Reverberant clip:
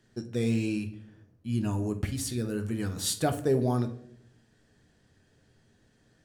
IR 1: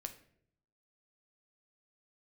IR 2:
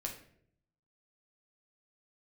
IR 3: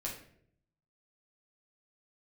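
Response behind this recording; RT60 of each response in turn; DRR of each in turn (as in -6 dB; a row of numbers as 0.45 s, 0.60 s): 1; 0.65 s, 0.65 s, 0.65 s; 6.0 dB, 0.0 dB, -4.0 dB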